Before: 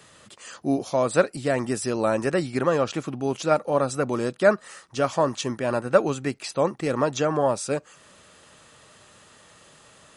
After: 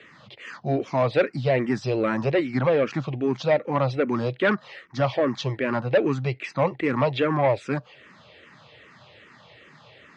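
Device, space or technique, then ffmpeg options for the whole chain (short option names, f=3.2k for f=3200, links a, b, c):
barber-pole phaser into a guitar amplifier: -filter_complex "[0:a]asplit=2[a][b];[b]afreqshift=-2.5[c];[a][c]amix=inputs=2:normalize=1,asoftclip=type=tanh:threshold=-18.5dB,highpass=82,equalizer=f=130:t=q:w=4:g=6,equalizer=f=1.3k:t=q:w=4:g=-3,equalizer=f=2.1k:t=q:w=4:g=7,lowpass=f=4.2k:w=0.5412,lowpass=f=4.2k:w=1.3066,volume=5dB"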